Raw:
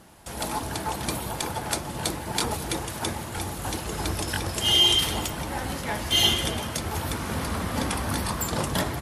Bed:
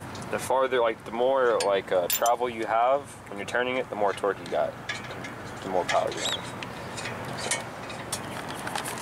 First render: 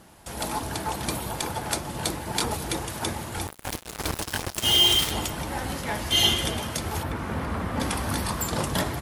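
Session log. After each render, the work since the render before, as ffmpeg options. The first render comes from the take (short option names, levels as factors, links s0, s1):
-filter_complex "[0:a]asettb=1/sr,asplit=3[s0][s1][s2];[s0]atrim=end=3.474[s3];[s1]atrim=start=3.47:end=5.11,asetpts=PTS-STARTPTS,afade=t=in:d=0.004:c=qsin,afade=t=out:st=1.636:d=0.004:c=qsin,acrusher=bits=3:mix=0:aa=0.5[s4];[s2]atrim=start=5.106[s5];[s3][s4]acrossfade=d=0.004:c1=hsin:c2=qsin[s6];[s6][s5]acrossfade=d=0.004:c1=qsin:c2=hsin,asettb=1/sr,asplit=3[s7][s8][s9];[s7]atrim=end=7.034[s10];[s8]atrim=start=7.03:end=7.8,asetpts=PTS-STARTPTS,afade=t=in:d=0.004:c=qsin,afade=t=out:st=0.766:d=0.004:c=qsin,acrossover=split=2600[s11][s12];[s12]acompressor=threshold=0.00316:ratio=4:attack=1:release=60[s13];[s11][s13]amix=inputs=2:normalize=0[s14];[s9]atrim=start=7.796[s15];[s10][s14]acrossfade=d=0.004:c1=hsin:c2=qsin[s16];[s16][s15]acrossfade=d=0.004:c1=qsin:c2=hsin"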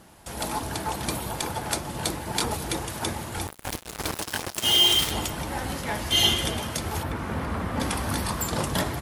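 -filter_complex "[0:a]asettb=1/sr,asplit=3[s0][s1][s2];[s0]atrim=end=4.064[s3];[s1]atrim=start=4.06:end=4.97,asetpts=PTS-STARTPTS,afade=t=in:d=0.004:c=qsin,afade=t=out:st=0.906:d=0.004:c=qsin,lowshelf=f=88:g=-12[s4];[s2]atrim=start=4.966[s5];[s3][s4]acrossfade=d=0.004:c1=hsin:c2=qsin[s6];[s6][s5]acrossfade=d=0.004:c1=qsin:c2=hsin"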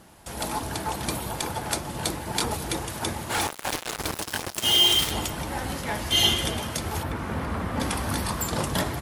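-filter_complex "[0:a]asplit=3[s0][s1][s2];[s0]afade=t=out:st=3.29:d=0.02[s3];[s1]asplit=2[s4][s5];[s5]highpass=f=720:p=1,volume=12.6,asoftclip=type=tanh:threshold=0.15[s6];[s4][s6]amix=inputs=2:normalize=0,lowpass=f=6300:p=1,volume=0.501,afade=t=in:st=3.29:d=0.02,afade=t=out:st=3.95:d=0.02[s7];[s2]afade=t=in:st=3.95:d=0.02[s8];[s3][s7][s8]amix=inputs=3:normalize=0"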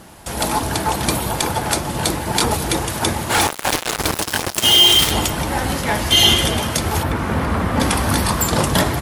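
-af "volume=3.16,alimiter=limit=0.708:level=0:latency=1"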